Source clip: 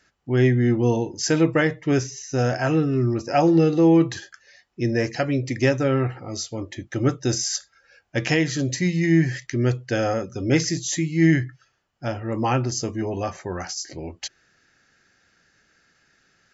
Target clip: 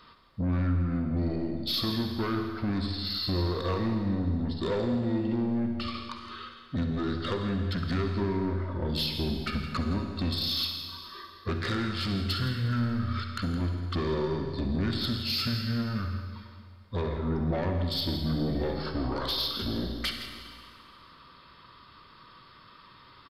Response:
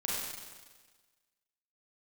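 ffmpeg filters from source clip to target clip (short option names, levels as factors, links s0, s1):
-filter_complex "[0:a]acompressor=threshold=0.0251:ratio=10,asoftclip=type=tanh:threshold=0.0224,bandreject=f=1200:w=16,aecho=1:1:118:0.237,asplit=2[s0][s1];[1:a]atrim=start_sample=2205[s2];[s1][s2]afir=irnorm=-1:irlink=0,volume=0.473[s3];[s0][s3]amix=inputs=2:normalize=0,asetrate=31311,aresample=44100,volume=1.78"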